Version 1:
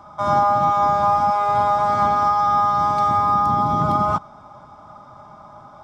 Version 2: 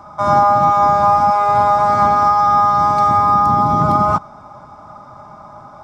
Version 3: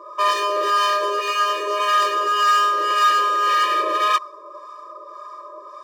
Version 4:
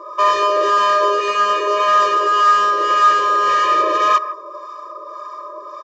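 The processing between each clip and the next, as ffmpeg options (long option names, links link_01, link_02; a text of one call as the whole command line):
ffmpeg -i in.wav -af "equalizer=frequency=3300:width=4.7:gain=-7.5,volume=5dB" out.wav
ffmpeg -i in.wav -filter_complex "[0:a]volume=18dB,asoftclip=hard,volume=-18dB,acrossover=split=880[link_01][link_02];[link_01]aeval=exprs='val(0)*(1-0.7/2+0.7/2*cos(2*PI*1.8*n/s))':channel_layout=same[link_03];[link_02]aeval=exprs='val(0)*(1-0.7/2-0.7/2*cos(2*PI*1.8*n/s))':channel_layout=same[link_04];[link_03][link_04]amix=inputs=2:normalize=0,afftfilt=real='re*eq(mod(floor(b*sr/1024/320),2),1)':imag='im*eq(mod(floor(b*sr/1024/320),2),1)':win_size=1024:overlap=0.75,volume=7.5dB" out.wav
ffmpeg -i in.wav -filter_complex "[0:a]acrossover=split=1600[link_01][link_02];[link_01]aecho=1:1:154:0.266[link_03];[link_02]asoftclip=type=tanh:threshold=-32dB[link_04];[link_03][link_04]amix=inputs=2:normalize=0,aresample=16000,aresample=44100,volume=5.5dB" out.wav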